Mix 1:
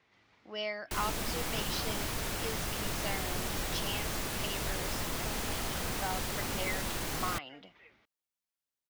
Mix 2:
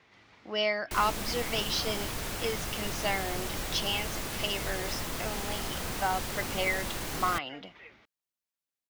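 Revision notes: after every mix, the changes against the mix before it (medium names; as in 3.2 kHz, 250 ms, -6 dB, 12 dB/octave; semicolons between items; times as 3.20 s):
speech +8.0 dB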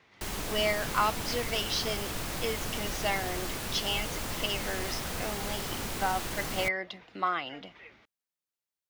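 background: entry -0.70 s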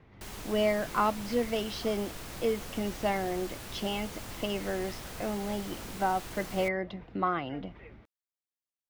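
speech: add tilt EQ -4.5 dB/octave; background -7.5 dB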